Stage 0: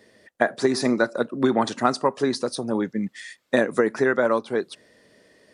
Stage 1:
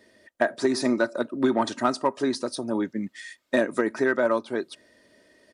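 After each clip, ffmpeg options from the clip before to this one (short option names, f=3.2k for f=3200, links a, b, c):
-filter_complex "[0:a]aecho=1:1:3.2:0.43,asplit=2[a][b];[b]asoftclip=type=hard:threshold=-11.5dB,volume=-3.5dB[c];[a][c]amix=inputs=2:normalize=0,volume=-7.5dB"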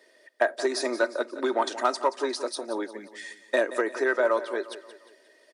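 -af "highpass=f=370:w=0.5412,highpass=f=370:w=1.3066,aecho=1:1:177|354|531|708:0.2|0.0918|0.0422|0.0194"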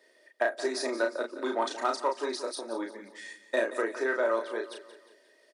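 -filter_complex "[0:a]asplit=2[a][b];[b]adelay=35,volume=-4dB[c];[a][c]amix=inputs=2:normalize=0,volume=-5dB"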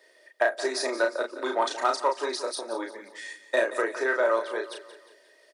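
-af "highpass=390,volume=4.5dB"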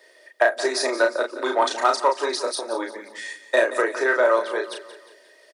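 -filter_complex "[0:a]acrossover=split=200[a][b];[a]adelay=150[c];[c][b]amix=inputs=2:normalize=0,volume=5.5dB"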